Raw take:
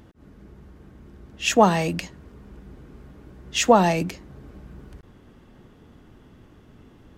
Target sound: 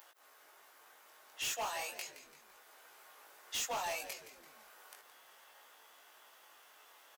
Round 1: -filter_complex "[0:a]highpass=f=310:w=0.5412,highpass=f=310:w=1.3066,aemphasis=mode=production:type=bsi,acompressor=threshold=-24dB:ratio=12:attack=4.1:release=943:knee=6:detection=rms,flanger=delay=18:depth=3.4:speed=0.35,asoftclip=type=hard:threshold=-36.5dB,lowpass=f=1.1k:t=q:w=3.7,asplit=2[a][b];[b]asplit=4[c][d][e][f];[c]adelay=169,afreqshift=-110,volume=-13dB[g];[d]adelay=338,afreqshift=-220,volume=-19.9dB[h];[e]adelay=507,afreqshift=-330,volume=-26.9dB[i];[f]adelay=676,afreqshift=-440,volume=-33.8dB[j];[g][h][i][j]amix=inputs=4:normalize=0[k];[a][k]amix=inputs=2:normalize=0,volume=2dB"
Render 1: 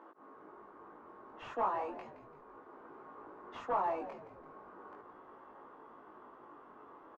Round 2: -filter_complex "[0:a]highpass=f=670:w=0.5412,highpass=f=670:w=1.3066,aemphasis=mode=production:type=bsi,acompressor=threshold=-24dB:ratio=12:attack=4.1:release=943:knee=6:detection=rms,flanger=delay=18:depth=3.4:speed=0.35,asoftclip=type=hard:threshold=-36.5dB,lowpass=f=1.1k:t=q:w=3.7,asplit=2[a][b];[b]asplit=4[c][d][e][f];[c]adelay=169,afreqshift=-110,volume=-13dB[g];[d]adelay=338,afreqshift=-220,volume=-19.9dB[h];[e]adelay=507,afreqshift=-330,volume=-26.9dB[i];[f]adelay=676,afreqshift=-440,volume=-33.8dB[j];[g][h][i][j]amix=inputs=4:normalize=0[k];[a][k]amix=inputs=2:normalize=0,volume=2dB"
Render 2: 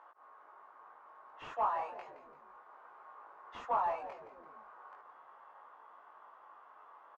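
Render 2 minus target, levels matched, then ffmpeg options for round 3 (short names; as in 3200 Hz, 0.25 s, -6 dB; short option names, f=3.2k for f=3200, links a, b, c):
1000 Hz band +6.5 dB
-filter_complex "[0:a]highpass=f=670:w=0.5412,highpass=f=670:w=1.3066,aemphasis=mode=production:type=bsi,acompressor=threshold=-24dB:ratio=12:attack=4.1:release=943:knee=6:detection=rms,flanger=delay=18:depth=3.4:speed=0.35,asoftclip=type=hard:threshold=-36.5dB,asplit=2[a][b];[b]asplit=4[c][d][e][f];[c]adelay=169,afreqshift=-110,volume=-13dB[g];[d]adelay=338,afreqshift=-220,volume=-19.9dB[h];[e]adelay=507,afreqshift=-330,volume=-26.9dB[i];[f]adelay=676,afreqshift=-440,volume=-33.8dB[j];[g][h][i][j]amix=inputs=4:normalize=0[k];[a][k]amix=inputs=2:normalize=0,volume=2dB"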